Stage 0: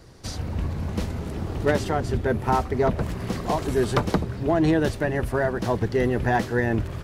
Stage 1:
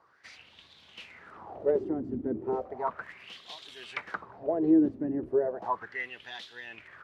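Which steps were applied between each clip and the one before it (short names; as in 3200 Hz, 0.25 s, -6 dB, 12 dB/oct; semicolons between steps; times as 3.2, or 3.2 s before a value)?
wah 0.35 Hz 270–3600 Hz, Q 6.1; gain +3.5 dB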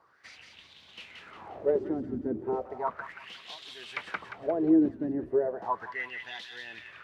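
thin delay 0.177 s, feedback 37%, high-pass 1600 Hz, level -4 dB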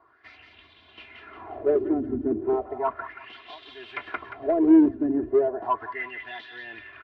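comb 2.9 ms, depth 96%; in parallel at -6 dB: hard clip -22 dBFS, distortion -6 dB; on the sum: air absorption 380 m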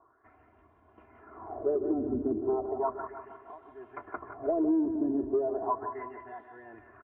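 LPF 1200 Hz 24 dB/oct; feedback echo 0.155 s, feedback 54%, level -12 dB; compressor 5:1, threshold -23 dBFS, peak gain reduction 10 dB; gain -2 dB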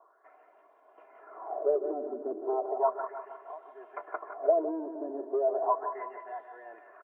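ladder high-pass 470 Hz, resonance 50%; gain +9 dB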